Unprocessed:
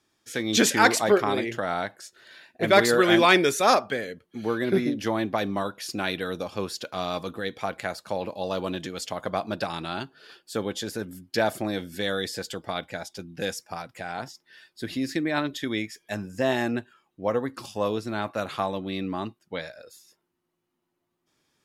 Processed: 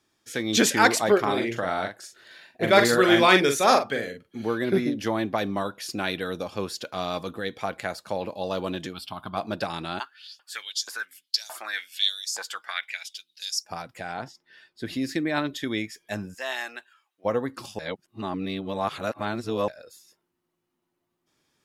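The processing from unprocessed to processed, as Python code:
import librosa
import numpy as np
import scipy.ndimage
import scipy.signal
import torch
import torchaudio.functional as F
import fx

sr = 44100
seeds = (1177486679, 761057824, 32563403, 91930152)

y = fx.doubler(x, sr, ms=43.0, db=-6.5, at=(1.19, 4.43))
y = fx.fixed_phaser(y, sr, hz=1900.0, stages=6, at=(8.92, 9.36), fade=0.02)
y = fx.filter_lfo_highpass(y, sr, shape='saw_up', hz=fx.line((9.98, 2.8), (13.64, 0.52)), low_hz=880.0, high_hz=6900.0, q=4.3, at=(9.98, 13.64), fade=0.02)
y = fx.lowpass(y, sr, hz=3700.0, slope=6, at=(14.14, 14.86))
y = fx.highpass(y, sr, hz=1100.0, slope=12, at=(16.33, 17.24), fade=0.02)
y = fx.edit(y, sr, fx.reverse_span(start_s=17.79, length_s=1.89), tone=tone)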